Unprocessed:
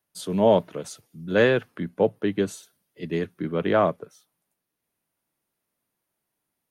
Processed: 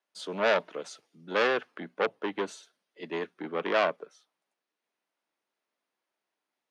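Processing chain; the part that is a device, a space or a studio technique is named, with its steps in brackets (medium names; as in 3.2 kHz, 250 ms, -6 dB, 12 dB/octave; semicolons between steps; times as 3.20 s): high-pass 240 Hz 6 dB/octave; bass shelf 310 Hz -5.5 dB; treble shelf 9.1 kHz -10 dB; public-address speaker with an overloaded transformer (transformer saturation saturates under 1.9 kHz; band-pass 240–6400 Hz)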